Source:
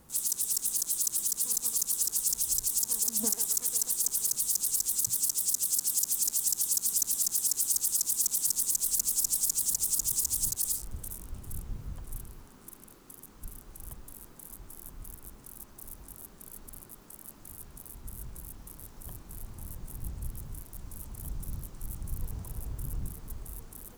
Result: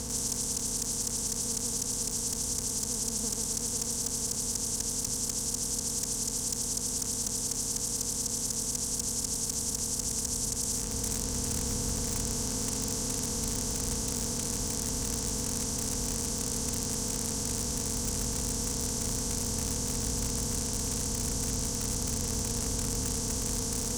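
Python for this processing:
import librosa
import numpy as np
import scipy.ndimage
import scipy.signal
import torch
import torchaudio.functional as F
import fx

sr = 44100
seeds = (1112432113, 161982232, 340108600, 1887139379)

p1 = fx.bin_compress(x, sr, power=0.2)
p2 = scipy.signal.sosfilt(scipy.signal.butter(2, 6400.0, 'lowpass', fs=sr, output='sos'), p1)
p3 = p2 + fx.echo_wet_highpass(p2, sr, ms=246, feedback_pct=84, hz=3500.0, wet_db=-17, dry=0)
p4 = fx.rider(p3, sr, range_db=10, speed_s=0.5)
p5 = (np.mod(10.0 ** (15.5 / 20.0) * p4 + 1.0, 2.0) - 1.0) / 10.0 ** (15.5 / 20.0)
p6 = p4 + (p5 * librosa.db_to_amplitude(-6.0))
p7 = scipy.signal.sosfilt(scipy.signal.butter(2, 47.0, 'highpass', fs=sr, output='sos'), p6)
y = p7 * librosa.db_to_amplitude(-7.0)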